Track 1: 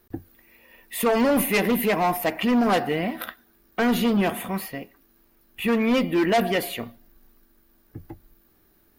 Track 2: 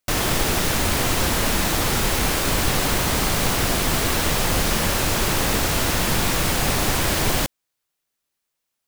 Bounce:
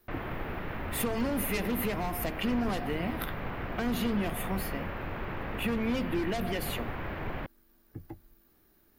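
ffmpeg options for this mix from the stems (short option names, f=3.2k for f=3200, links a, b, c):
-filter_complex "[0:a]acompressor=threshold=-23dB:ratio=6,volume=-4dB[a];[1:a]lowpass=f=2.3k:w=0.5412,lowpass=f=2.3k:w=1.3066,volume=-13.5dB[b];[a][b]amix=inputs=2:normalize=0,acrossover=split=330|3000[c][d][e];[d]acompressor=threshold=-35dB:ratio=2.5[f];[c][f][e]amix=inputs=3:normalize=0"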